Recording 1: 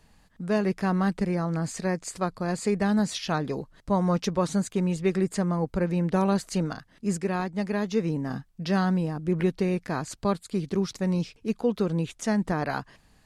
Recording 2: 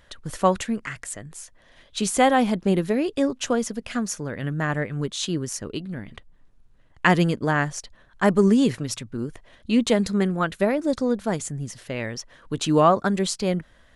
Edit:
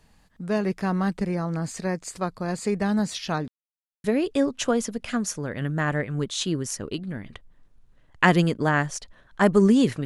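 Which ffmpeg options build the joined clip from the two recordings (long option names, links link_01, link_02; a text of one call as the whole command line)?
ffmpeg -i cue0.wav -i cue1.wav -filter_complex "[0:a]apad=whole_dur=10.05,atrim=end=10.05,asplit=2[link_01][link_02];[link_01]atrim=end=3.48,asetpts=PTS-STARTPTS,afade=type=out:start_time=3.476:duration=0.004:curve=hsin[link_03];[link_02]atrim=start=3.48:end=4.04,asetpts=PTS-STARTPTS,volume=0[link_04];[1:a]atrim=start=2.86:end=8.87,asetpts=PTS-STARTPTS,afade=type=in:duration=0.004:curve=hsin[link_05];[link_03][link_04][link_05]concat=n=3:v=0:a=1" out.wav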